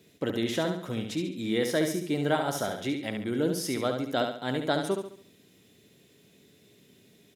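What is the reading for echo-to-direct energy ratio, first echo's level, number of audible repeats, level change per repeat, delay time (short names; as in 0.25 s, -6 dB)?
-5.0 dB, -6.0 dB, 4, -8.0 dB, 70 ms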